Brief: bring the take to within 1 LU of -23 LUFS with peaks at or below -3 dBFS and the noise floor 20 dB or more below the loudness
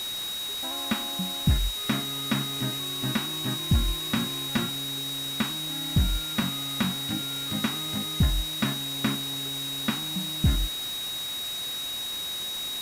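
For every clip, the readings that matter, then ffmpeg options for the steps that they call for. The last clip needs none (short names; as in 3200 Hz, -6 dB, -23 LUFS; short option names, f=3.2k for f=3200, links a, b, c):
steady tone 3800 Hz; tone level -31 dBFS; noise floor -33 dBFS; noise floor target -48 dBFS; loudness -28.0 LUFS; peak -12.0 dBFS; loudness target -23.0 LUFS
-> -af "bandreject=f=3.8k:w=30"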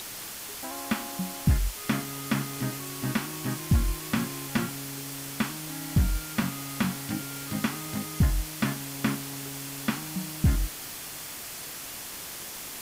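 steady tone none; noise floor -40 dBFS; noise floor target -51 dBFS
-> -af "afftdn=nr=11:nf=-40"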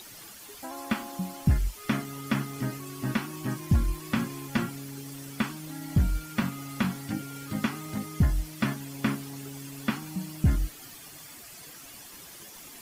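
noise floor -47 dBFS; noise floor target -51 dBFS
-> -af "afftdn=nr=6:nf=-47"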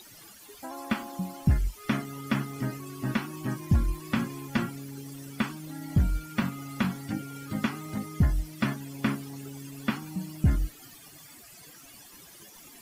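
noise floor -51 dBFS; noise floor target -52 dBFS
-> -af "afftdn=nr=6:nf=-51"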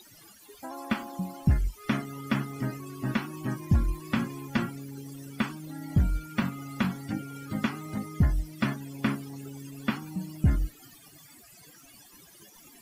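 noise floor -54 dBFS; loudness -31.5 LUFS; peak -14.0 dBFS; loudness target -23.0 LUFS
-> -af "volume=8.5dB"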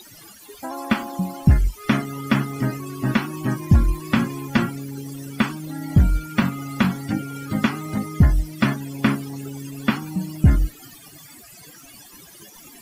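loudness -23.0 LUFS; peak -5.5 dBFS; noise floor -46 dBFS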